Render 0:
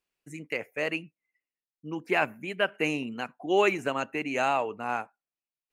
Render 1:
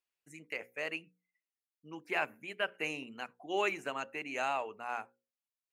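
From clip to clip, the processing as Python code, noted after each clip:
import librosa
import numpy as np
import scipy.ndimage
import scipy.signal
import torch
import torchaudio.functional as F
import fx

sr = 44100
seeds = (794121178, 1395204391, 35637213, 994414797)

y = fx.low_shelf(x, sr, hz=400.0, db=-9.0)
y = fx.hum_notches(y, sr, base_hz=60, count=9)
y = F.gain(torch.from_numpy(y), -6.0).numpy()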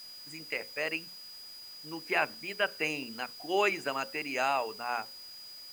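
y = x + 10.0 ** (-50.0 / 20.0) * np.sin(2.0 * np.pi * 4900.0 * np.arange(len(x)) / sr)
y = fx.quant_dither(y, sr, seeds[0], bits=10, dither='triangular')
y = F.gain(torch.from_numpy(y), 4.5).numpy()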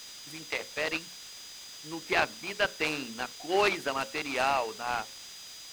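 y = fx.noise_mod_delay(x, sr, seeds[1], noise_hz=1300.0, depth_ms=0.031)
y = F.gain(torch.from_numpy(y), 2.0).numpy()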